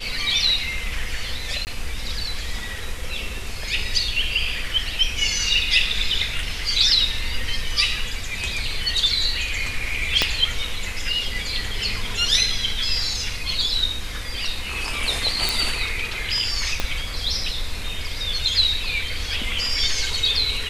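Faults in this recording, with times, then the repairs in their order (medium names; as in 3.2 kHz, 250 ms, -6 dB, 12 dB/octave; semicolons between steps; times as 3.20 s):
1.65–1.67 s: dropout 19 ms
10.22 s: pop -3 dBFS
15.49 s: pop
16.80 s: pop -7 dBFS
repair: de-click; interpolate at 1.65 s, 19 ms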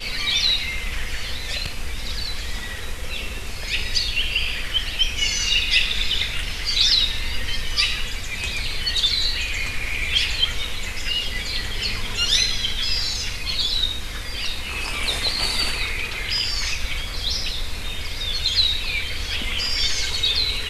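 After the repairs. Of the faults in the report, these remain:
10.22 s: pop
16.80 s: pop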